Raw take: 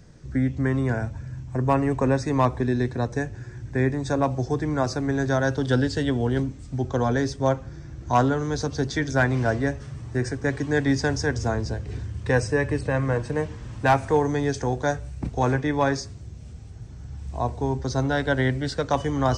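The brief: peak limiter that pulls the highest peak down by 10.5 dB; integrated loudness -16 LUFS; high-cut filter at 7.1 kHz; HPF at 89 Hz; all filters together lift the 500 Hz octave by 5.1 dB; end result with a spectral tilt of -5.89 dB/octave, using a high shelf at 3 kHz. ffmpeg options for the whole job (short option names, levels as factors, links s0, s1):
-af "highpass=89,lowpass=7100,equalizer=f=500:t=o:g=6,highshelf=f=3000:g=4,volume=3.35,alimiter=limit=0.531:level=0:latency=1"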